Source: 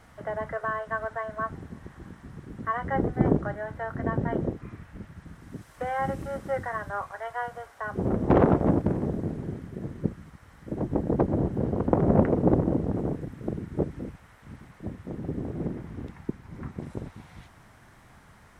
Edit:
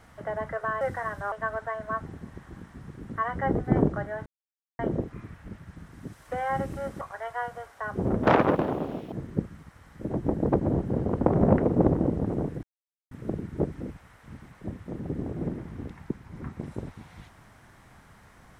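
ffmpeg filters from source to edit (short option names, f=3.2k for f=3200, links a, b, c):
-filter_complex "[0:a]asplit=9[a][b][c][d][e][f][g][h][i];[a]atrim=end=0.812[j];[b]atrim=start=6.498:end=7.012[k];[c]atrim=start=0.808:end=3.75,asetpts=PTS-STARTPTS,afade=t=out:st=2.938:d=0.004:c=hsin[l];[d]atrim=start=3.75:end=4.28,asetpts=PTS-STARTPTS,volume=0[m];[e]atrim=start=4.28:end=6.502,asetpts=PTS-STARTPTS,afade=t=in:d=0.004:c=hsin[n];[f]atrim=start=7.008:end=8.234[o];[g]atrim=start=8.23:end=9.79,asetpts=PTS-STARTPTS,asetrate=77175,aresample=44100[p];[h]atrim=start=9.786:end=13.3,asetpts=PTS-STARTPTS,afade=t=out:st=3.51:d=0.004:c=hsin,apad=pad_dur=0.48[q];[i]atrim=start=13.3,asetpts=PTS-STARTPTS,afade=t=in:d=0.004:c=hsin[r];[j][k]acrossfade=d=0.004:c1=hsin:c2=hsin[s];[l][m][n]concat=n=3:v=0:a=1[t];[s][t]acrossfade=d=0.004:c1=hsin:c2=hsin[u];[u][o]acrossfade=d=0.004:c1=hsin:c2=hsin[v];[v][p]acrossfade=d=0.004:c1=hsin:c2=hsin[w];[q][r]concat=n=2:v=0:a=1[x];[w][x]acrossfade=d=0.004:c1=hsin:c2=hsin"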